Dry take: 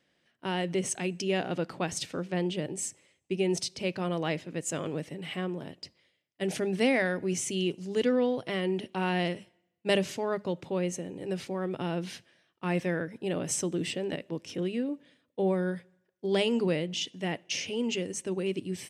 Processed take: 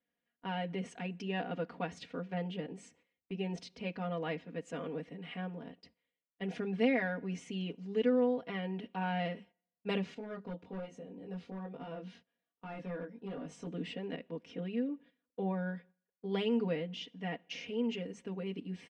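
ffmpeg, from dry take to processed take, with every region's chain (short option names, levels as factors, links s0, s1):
-filter_complex "[0:a]asettb=1/sr,asplit=3[s0][s1][s2];[s0]atrim=end=10.144[s3];[s1]atrim=start=10.14:end=13.67,asetpts=PTS-STARTPTS,afade=t=in:d=0.004:c=qsin,afade=t=out:st=3.526:d=0.004:c=qsin,equalizer=f=2000:w=1.2:g=-5.5,flanger=delay=19.5:depth=2.7:speed=1.2,volume=29.9,asoftclip=hard,volume=0.0335[s4];[s2]atrim=start=13.666[s5];[s3][s4]acrossfade=d=0.004:c1=hsin:c2=qsin[s6];[s6][s5]acrossfade=d=0.004:c1=qsin:c2=hsin,agate=range=0.316:threshold=0.00282:ratio=16:detection=peak,lowpass=2700,aecho=1:1:4.2:0.99,volume=0.376"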